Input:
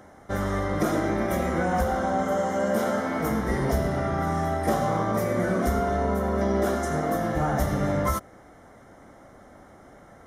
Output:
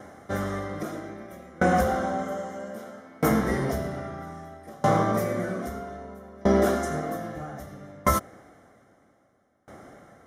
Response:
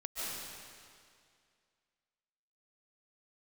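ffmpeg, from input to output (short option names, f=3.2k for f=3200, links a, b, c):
-af "highpass=82,bandreject=f=920:w=8.1,aeval=exprs='val(0)*pow(10,-28*if(lt(mod(0.62*n/s,1),2*abs(0.62)/1000),1-mod(0.62*n/s,1)/(2*abs(0.62)/1000),(mod(0.62*n/s,1)-2*abs(0.62)/1000)/(1-2*abs(0.62)/1000))/20)':c=same,volume=6dB"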